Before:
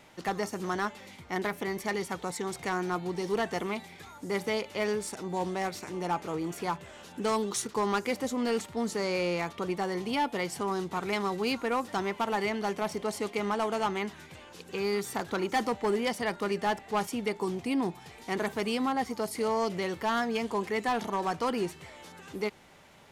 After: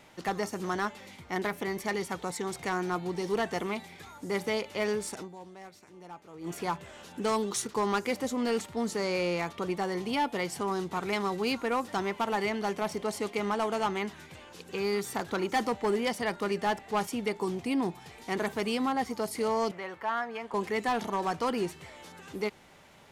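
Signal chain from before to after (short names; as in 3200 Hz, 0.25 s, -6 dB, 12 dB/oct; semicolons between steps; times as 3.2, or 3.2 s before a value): 5.22–6.48 dip -15.5 dB, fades 0.43 s exponential; 19.71–20.54 three-band isolator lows -13 dB, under 590 Hz, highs -15 dB, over 2300 Hz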